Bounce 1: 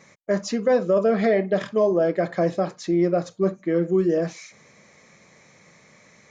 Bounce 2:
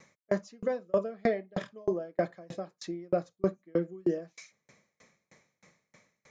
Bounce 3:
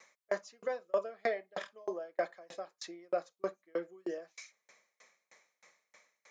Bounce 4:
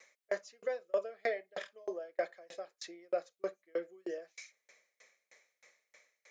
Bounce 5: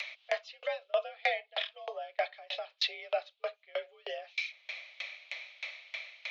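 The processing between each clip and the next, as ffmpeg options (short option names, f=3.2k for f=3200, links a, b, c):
-af "aeval=exprs='val(0)*pow(10,-34*if(lt(mod(3.2*n/s,1),2*abs(3.2)/1000),1-mod(3.2*n/s,1)/(2*abs(3.2)/1000),(mod(3.2*n/s,1)-2*abs(3.2)/1000)/(1-2*abs(3.2)/1000))/20)':c=same,volume=-3dB"
-af "highpass=630"
-af "equalizer=f=125:t=o:w=1:g=-8,equalizer=f=250:t=o:w=1:g=-5,equalizer=f=500:t=o:w=1:g=4,equalizer=f=1k:t=o:w=1:g=-8,equalizer=f=2k:t=o:w=1:g=3,volume=-1dB"
-af "highpass=f=540:t=q:w=0.5412,highpass=f=540:t=q:w=1.307,lowpass=f=3.4k:t=q:w=0.5176,lowpass=f=3.4k:t=q:w=0.7071,lowpass=f=3.4k:t=q:w=1.932,afreqshift=54,acompressor=mode=upward:threshold=-39dB:ratio=2.5,aexciter=amount=4.9:drive=8.4:freq=2.6k,volume=4dB"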